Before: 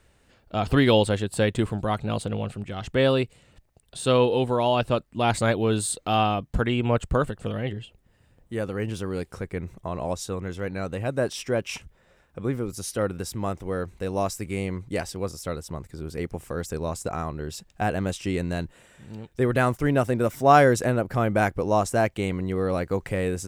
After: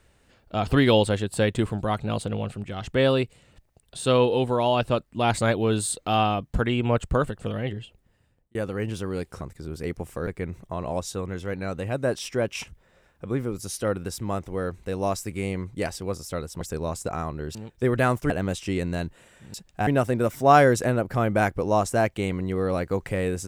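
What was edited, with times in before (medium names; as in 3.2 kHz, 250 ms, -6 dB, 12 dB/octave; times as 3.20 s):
7.70–8.55 s: fade out equal-power
15.75–16.61 s: move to 9.41 s
17.55–17.88 s: swap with 19.12–19.87 s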